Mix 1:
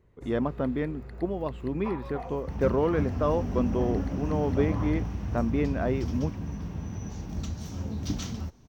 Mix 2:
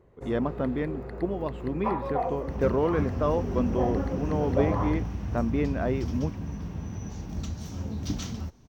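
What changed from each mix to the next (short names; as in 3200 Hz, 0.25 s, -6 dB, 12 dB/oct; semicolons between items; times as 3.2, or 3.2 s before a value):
first sound: add bell 530 Hz +12 dB 2.9 oct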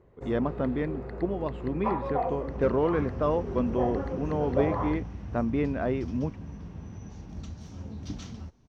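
second sound -6.0 dB; master: add air absorption 56 m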